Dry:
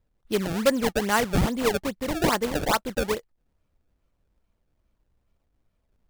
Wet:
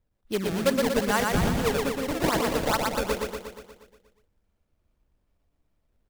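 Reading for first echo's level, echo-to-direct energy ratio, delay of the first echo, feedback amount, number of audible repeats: -3.0 dB, -1.0 dB, 0.119 s, 59%, 7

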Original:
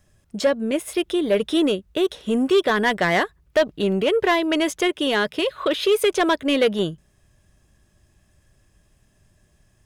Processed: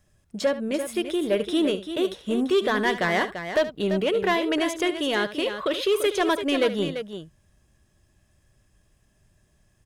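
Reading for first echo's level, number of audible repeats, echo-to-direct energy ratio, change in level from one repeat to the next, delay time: -14.0 dB, 2, -8.0 dB, no steady repeat, 73 ms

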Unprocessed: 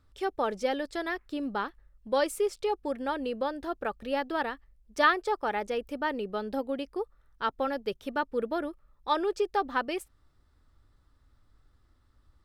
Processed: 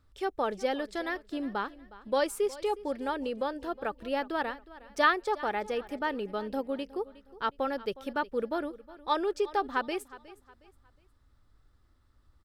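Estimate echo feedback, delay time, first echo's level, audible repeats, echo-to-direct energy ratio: 34%, 0.363 s, -18.5 dB, 2, -18.0 dB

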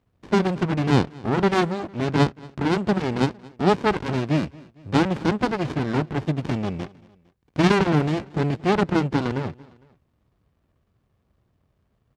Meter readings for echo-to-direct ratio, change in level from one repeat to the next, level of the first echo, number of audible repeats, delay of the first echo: -22.0 dB, -5.5 dB, -23.0 dB, 2, 0.228 s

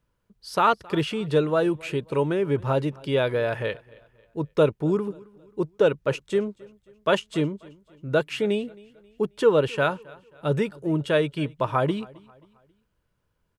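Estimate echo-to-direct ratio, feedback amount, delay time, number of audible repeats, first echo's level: -22.5 dB, 41%, 0.268 s, 2, -23.5 dB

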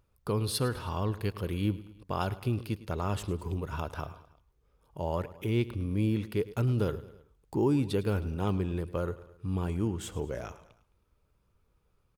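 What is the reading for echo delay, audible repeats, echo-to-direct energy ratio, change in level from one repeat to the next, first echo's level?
0.106 s, 3, -15.5 dB, -5.5 dB, -17.0 dB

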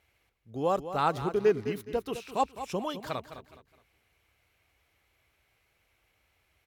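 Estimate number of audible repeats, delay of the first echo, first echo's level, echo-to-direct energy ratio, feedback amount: 3, 0.209 s, -11.5 dB, -11.0 dB, 31%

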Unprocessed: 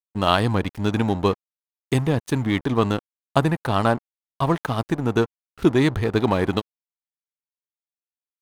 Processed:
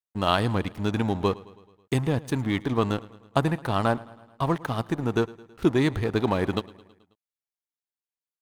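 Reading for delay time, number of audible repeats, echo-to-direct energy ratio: 0.108 s, 4, -19.0 dB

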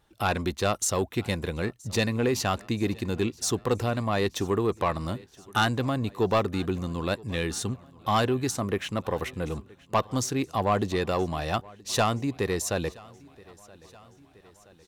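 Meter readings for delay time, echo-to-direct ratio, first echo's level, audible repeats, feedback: 0.974 s, -21.5 dB, -23.5 dB, 3, 60%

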